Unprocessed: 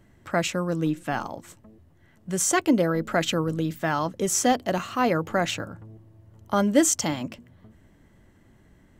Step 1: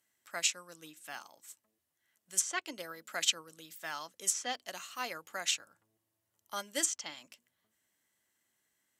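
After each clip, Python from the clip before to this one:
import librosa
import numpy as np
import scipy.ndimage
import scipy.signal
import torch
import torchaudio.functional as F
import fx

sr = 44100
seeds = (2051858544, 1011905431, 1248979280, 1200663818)

y = np.diff(x, prepend=0.0)
y = fx.env_lowpass_down(y, sr, base_hz=2900.0, full_db=-23.5)
y = fx.upward_expand(y, sr, threshold_db=-51.0, expansion=1.5)
y = F.gain(torch.from_numpy(y), 6.5).numpy()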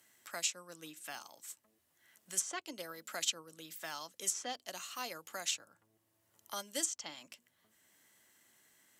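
y = fx.dynamic_eq(x, sr, hz=1900.0, q=0.91, threshold_db=-48.0, ratio=4.0, max_db=-6)
y = fx.band_squash(y, sr, depth_pct=40)
y = F.gain(torch.from_numpy(y), -1.0).numpy()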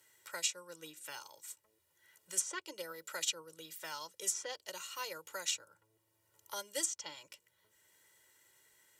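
y = x + 0.91 * np.pad(x, (int(2.1 * sr / 1000.0), 0))[:len(x)]
y = F.gain(torch.from_numpy(y), -2.5).numpy()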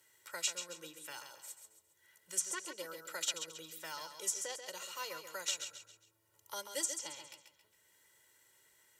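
y = fx.echo_feedback(x, sr, ms=136, feedback_pct=38, wet_db=-8.0)
y = F.gain(torch.from_numpy(y), -1.0).numpy()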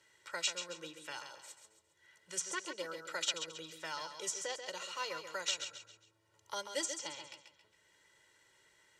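y = scipy.signal.sosfilt(scipy.signal.butter(2, 5500.0, 'lowpass', fs=sr, output='sos'), x)
y = F.gain(torch.from_numpy(y), 3.5).numpy()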